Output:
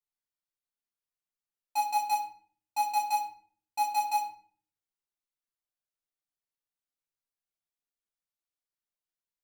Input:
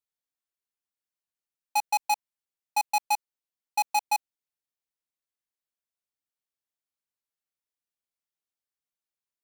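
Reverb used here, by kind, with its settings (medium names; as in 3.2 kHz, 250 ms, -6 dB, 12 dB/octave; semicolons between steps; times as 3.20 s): simulated room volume 52 m³, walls mixed, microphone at 1 m; trim -9.5 dB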